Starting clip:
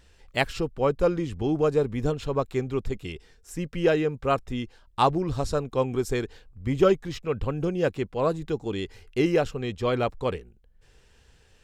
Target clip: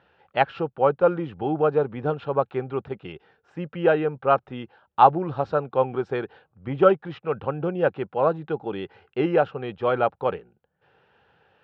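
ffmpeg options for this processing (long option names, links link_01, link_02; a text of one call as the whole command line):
ffmpeg -i in.wav -af "highpass=frequency=110:width=0.5412,highpass=frequency=110:width=1.3066,equalizer=frequency=110:width_type=q:width=4:gain=-5,equalizer=frequency=250:width_type=q:width=4:gain=-5,equalizer=frequency=560:width_type=q:width=4:gain=4,equalizer=frequency=810:width_type=q:width=4:gain=10,equalizer=frequency=1400:width_type=q:width=4:gain=8,equalizer=frequency=2100:width_type=q:width=4:gain=-5,lowpass=frequency=3000:width=0.5412,lowpass=frequency=3000:width=1.3066" out.wav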